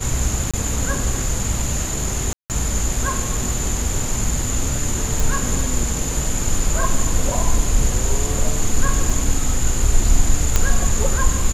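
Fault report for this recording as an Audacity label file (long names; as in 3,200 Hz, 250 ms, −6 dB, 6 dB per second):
0.510000	0.540000	drop-out 26 ms
2.330000	2.500000	drop-out 168 ms
5.200000	5.200000	click
9.100000	9.100000	drop-out 2.5 ms
10.560000	10.560000	click −1 dBFS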